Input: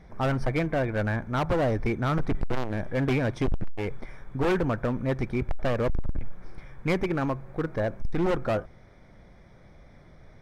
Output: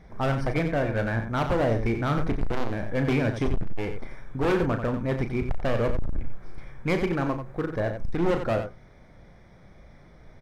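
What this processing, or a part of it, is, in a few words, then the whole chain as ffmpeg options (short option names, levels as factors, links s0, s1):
slapback doubling: -filter_complex "[0:a]asplit=3[s0][s1][s2];[s1]adelay=35,volume=0.376[s3];[s2]adelay=90,volume=0.376[s4];[s0][s3][s4]amix=inputs=3:normalize=0"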